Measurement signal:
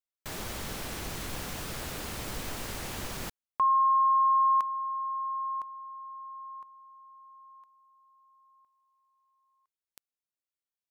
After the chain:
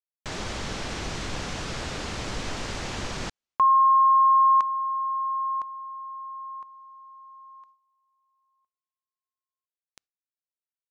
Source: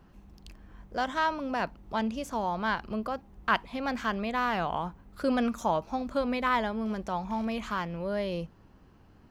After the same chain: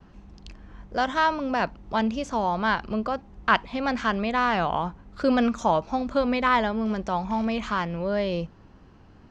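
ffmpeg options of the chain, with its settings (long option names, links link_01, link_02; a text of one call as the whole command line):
ffmpeg -i in.wav -af "lowpass=frequency=7000:width=0.5412,lowpass=frequency=7000:width=1.3066,agate=range=-33dB:threshold=-57dB:ratio=3:release=193:detection=rms,volume=5.5dB" out.wav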